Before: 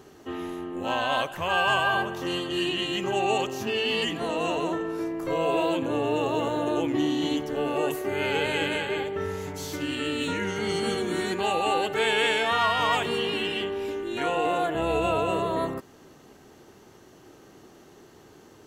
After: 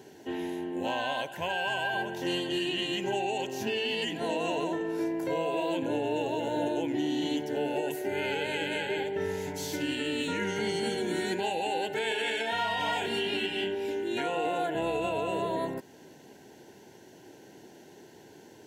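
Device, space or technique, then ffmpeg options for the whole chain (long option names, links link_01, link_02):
PA system with an anti-feedback notch: -filter_complex "[0:a]asettb=1/sr,asplit=3[link_01][link_02][link_03];[link_01]atrim=end=12.084[link_04];[link_02]atrim=start=12.08:end=13.75,asetpts=PTS-STARTPTS,afade=type=in:duration=0.004:curve=qsin,afade=type=out:start_time=1.666:duration=0.004:curve=qsin,asplit=2[link_05][link_06];[link_06]adelay=31,volume=-2.5dB[link_07];[link_05][link_07]amix=inputs=2:normalize=0,atrim=end_sample=73647[link_08];[link_03]atrim=start=13.746[link_09];[link_04][link_08]acrossfade=duration=0.004:curve1=hsin:curve2=qsin[link_10];[link_10][link_09]acrossfade=duration=0.004:curve1=qsin:curve2=hsin,highpass=120,asuperstop=centerf=1200:order=8:qfactor=3.5,alimiter=limit=-21dB:level=0:latency=1:release=379"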